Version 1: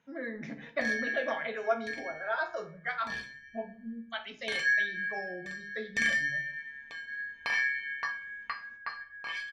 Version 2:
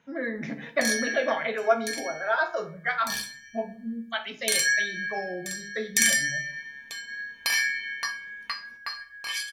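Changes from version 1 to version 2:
speech +7.0 dB; background: remove LPF 1900 Hz 12 dB/oct

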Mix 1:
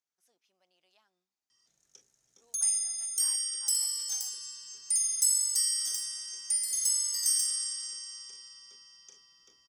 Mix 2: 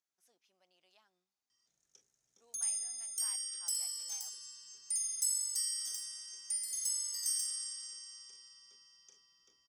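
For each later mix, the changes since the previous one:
background -7.5 dB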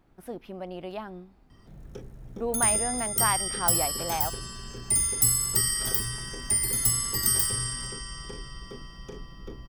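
speech +3.5 dB; master: remove band-pass 6400 Hz, Q 4.1

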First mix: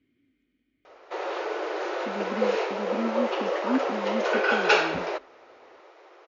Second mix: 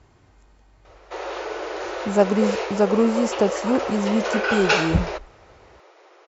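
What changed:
speech: remove vowel filter i; master: remove air absorption 100 m

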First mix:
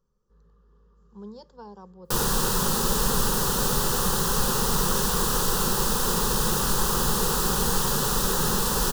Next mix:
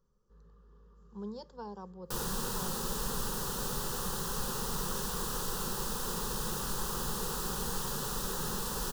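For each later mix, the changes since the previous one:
background -11.5 dB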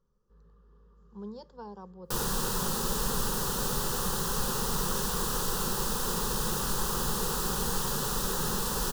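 speech: add air absorption 63 m; background +5.0 dB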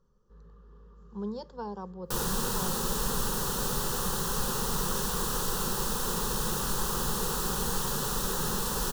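speech +6.0 dB; master: add notch 4900 Hz, Q 29

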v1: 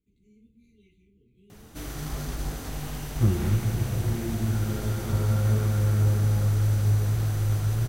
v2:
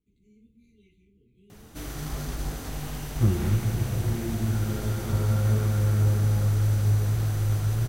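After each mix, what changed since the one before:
none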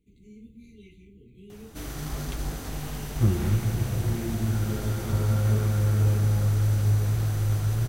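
speech +10.5 dB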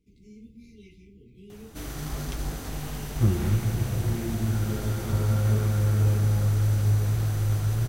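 speech: remove Butterworth band-stop 5200 Hz, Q 3

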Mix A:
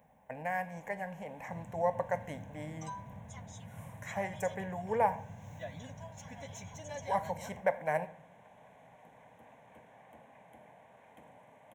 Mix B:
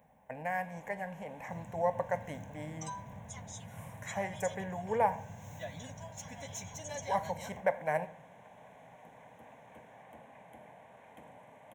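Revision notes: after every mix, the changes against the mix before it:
first sound +3.0 dB; second sound: add high shelf 4200 Hz +10 dB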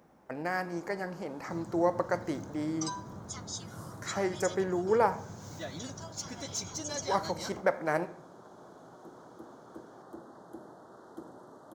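first sound: add Butterworth band-stop 2400 Hz, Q 1; master: remove fixed phaser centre 1300 Hz, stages 6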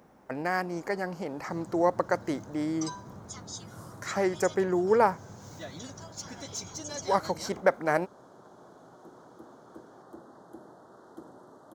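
speech +7.0 dB; reverb: off

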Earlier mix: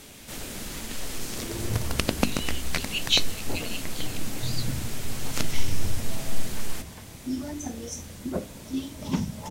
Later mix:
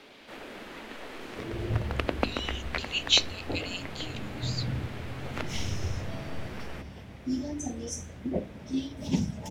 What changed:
first sound: add three-band isolator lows -18 dB, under 260 Hz, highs -24 dB, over 2800 Hz; second sound: add Butterworth band-stop 1300 Hz, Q 1

